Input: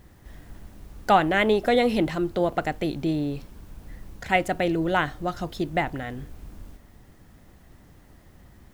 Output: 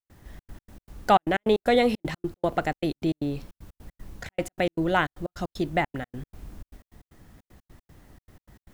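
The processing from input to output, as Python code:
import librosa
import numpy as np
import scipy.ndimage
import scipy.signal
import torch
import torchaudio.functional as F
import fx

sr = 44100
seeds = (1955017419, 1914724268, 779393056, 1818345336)

y = fx.step_gate(x, sr, bpm=154, pattern='.xxx.x.x', floor_db=-60.0, edge_ms=4.5)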